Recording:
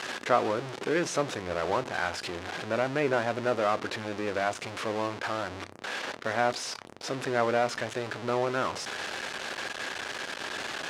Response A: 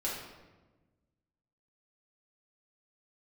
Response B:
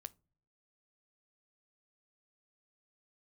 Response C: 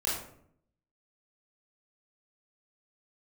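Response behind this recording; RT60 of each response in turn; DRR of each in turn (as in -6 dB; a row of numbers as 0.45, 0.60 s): B; 1.2 s, not exponential, 0.65 s; -6.5, 14.5, -7.5 dB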